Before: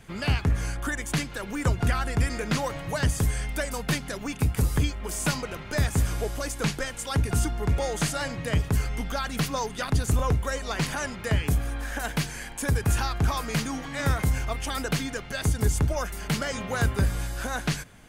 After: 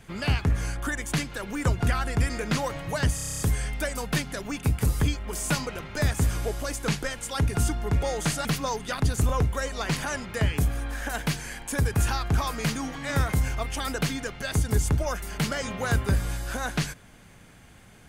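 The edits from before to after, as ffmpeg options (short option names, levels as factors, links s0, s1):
-filter_complex "[0:a]asplit=10[s0][s1][s2][s3][s4][s5][s6][s7][s8][s9];[s0]atrim=end=3.182[s10];[s1]atrim=start=3.148:end=3.182[s11];[s2]atrim=start=3.148:end=3.182[s12];[s3]atrim=start=3.148:end=3.182[s13];[s4]atrim=start=3.148:end=3.182[s14];[s5]atrim=start=3.148:end=3.182[s15];[s6]atrim=start=3.148:end=3.182[s16];[s7]atrim=start=3.148:end=3.182[s17];[s8]atrim=start=3.148:end=8.212[s18];[s9]atrim=start=9.348[s19];[s10][s11]acrossfade=d=0.004:c1=hsin:c2=hsin[s20];[s20][s12]acrossfade=d=0.004:c1=hsin:c2=hsin[s21];[s21][s13]acrossfade=d=0.004:c1=hsin:c2=hsin[s22];[s22][s14]acrossfade=d=0.004:c1=hsin:c2=hsin[s23];[s23][s15]acrossfade=d=0.004:c1=hsin:c2=hsin[s24];[s24][s16]acrossfade=d=0.004:c1=hsin:c2=hsin[s25];[s25][s17]acrossfade=d=0.004:c1=hsin:c2=hsin[s26];[s26][s18]acrossfade=d=0.004:c1=hsin:c2=hsin[s27];[s27][s19]acrossfade=d=0.004:c1=hsin:c2=hsin"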